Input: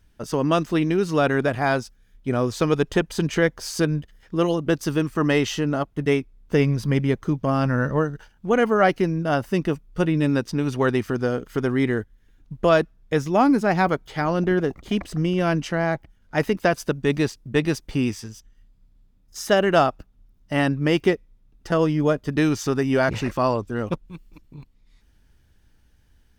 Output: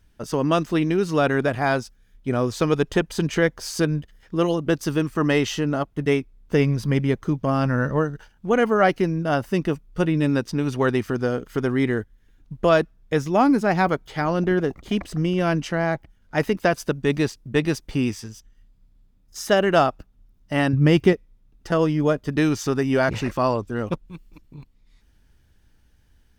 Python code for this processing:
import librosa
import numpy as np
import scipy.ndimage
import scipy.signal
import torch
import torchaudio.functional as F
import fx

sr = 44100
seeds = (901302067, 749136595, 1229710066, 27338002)

y = fx.peak_eq(x, sr, hz=94.0, db=12.0, octaves=2.0, at=(20.73, 21.13))